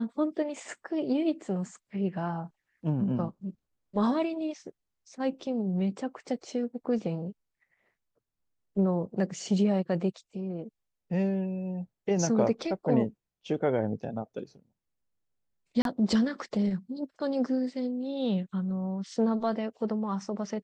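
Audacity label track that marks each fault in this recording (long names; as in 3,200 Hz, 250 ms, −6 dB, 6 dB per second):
15.820000	15.850000	drop-out 32 ms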